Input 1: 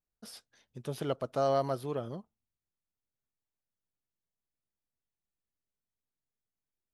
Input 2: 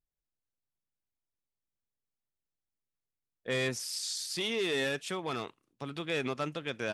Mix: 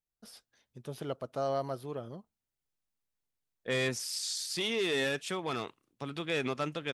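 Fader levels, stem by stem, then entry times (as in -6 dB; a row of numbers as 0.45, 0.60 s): -4.0, +0.5 dB; 0.00, 0.20 s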